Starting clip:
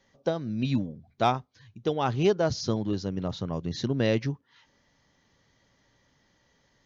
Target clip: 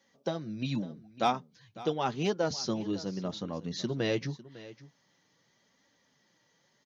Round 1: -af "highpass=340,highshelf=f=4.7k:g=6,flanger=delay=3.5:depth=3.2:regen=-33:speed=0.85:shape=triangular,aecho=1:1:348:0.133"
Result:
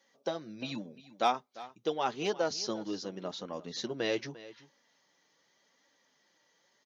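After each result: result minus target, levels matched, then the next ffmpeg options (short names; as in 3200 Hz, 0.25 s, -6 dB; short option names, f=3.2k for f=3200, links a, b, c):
125 Hz band -10.0 dB; echo 0.204 s early
-af "highpass=140,highshelf=f=4.7k:g=6,flanger=delay=3.5:depth=3.2:regen=-33:speed=0.85:shape=triangular,aecho=1:1:348:0.133"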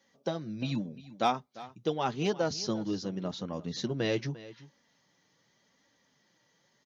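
echo 0.204 s early
-af "highpass=140,highshelf=f=4.7k:g=6,flanger=delay=3.5:depth=3.2:regen=-33:speed=0.85:shape=triangular,aecho=1:1:552:0.133"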